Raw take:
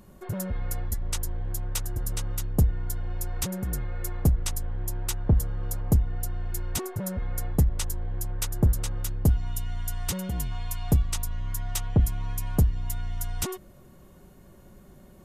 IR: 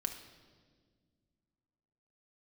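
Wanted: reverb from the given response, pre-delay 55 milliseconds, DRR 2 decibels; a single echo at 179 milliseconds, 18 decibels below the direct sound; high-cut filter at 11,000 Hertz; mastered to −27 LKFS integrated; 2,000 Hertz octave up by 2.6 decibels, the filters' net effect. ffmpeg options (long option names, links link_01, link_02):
-filter_complex "[0:a]lowpass=11000,equalizer=frequency=2000:width_type=o:gain=3.5,aecho=1:1:179:0.126,asplit=2[link_01][link_02];[1:a]atrim=start_sample=2205,adelay=55[link_03];[link_02][link_03]afir=irnorm=-1:irlink=0,volume=-2dB[link_04];[link_01][link_04]amix=inputs=2:normalize=0,volume=-0.5dB"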